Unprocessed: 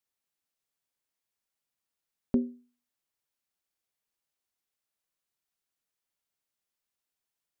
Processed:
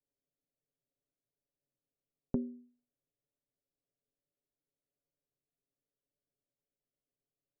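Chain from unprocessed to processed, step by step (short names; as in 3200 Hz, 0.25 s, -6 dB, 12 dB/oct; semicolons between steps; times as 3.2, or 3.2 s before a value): steep low-pass 630 Hz 48 dB/oct; comb 7.1 ms, depth 94%; compressor 6:1, threshold -33 dBFS, peak gain reduction 13 dB; gain +2 dB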